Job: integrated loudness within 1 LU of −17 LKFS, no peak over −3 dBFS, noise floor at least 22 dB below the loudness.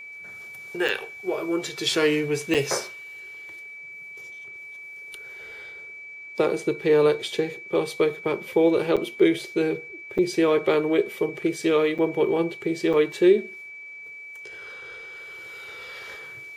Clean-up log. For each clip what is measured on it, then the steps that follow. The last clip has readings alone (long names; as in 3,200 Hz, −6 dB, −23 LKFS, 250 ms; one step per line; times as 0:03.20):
number of dropouts 6; longest dropout 6.7 ms; interfering tone 2,300 Hz; level of the tone −38 dBFS; integrated loudness −23.5 LKFS; sample peak −7.5 dBFS; target loudness −17.0 LKFS
→ repair the gap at 0:00.88/0:02.54/0:08.96/0:10.18/0:11.98/0:12.93, 6.7 ms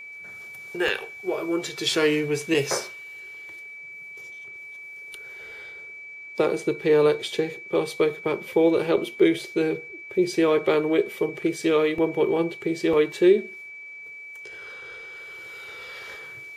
number of dropouts 0; interfering tone 2,300 Hz; level of the tone −38 dBFS
→ notch filter 2,300 Hz, Q 30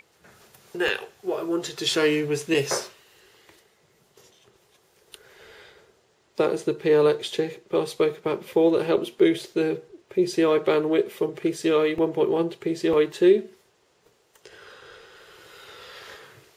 interfering tone none found; integrated loudness −23.5 LKFS; sample peak −7.5 dBFS; target loudness −17.0 LKFS
→ level +6.5 dB
brickwall limiter −3 dBFS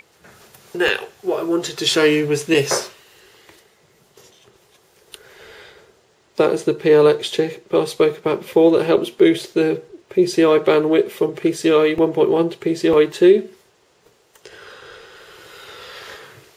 integrated loudness −17.5 LKFS; sample peak −3.0 dBFS; background noise floor −58 dBFS